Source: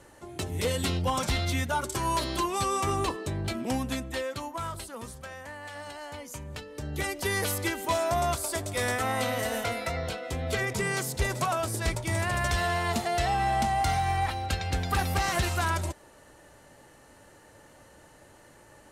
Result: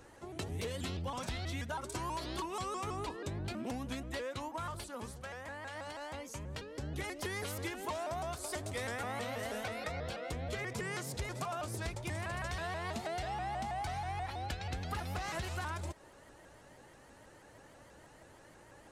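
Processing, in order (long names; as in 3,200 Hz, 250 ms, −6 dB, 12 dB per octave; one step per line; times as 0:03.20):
high-shelf EQ 11,000 Hz −10.5 dB
downward compressor, threshold −33 dBFS, peak gain reduction 11 dB
pitch modulation by a square or saw wave saw up 6.2 Hz, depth 160 cents
level −3 dB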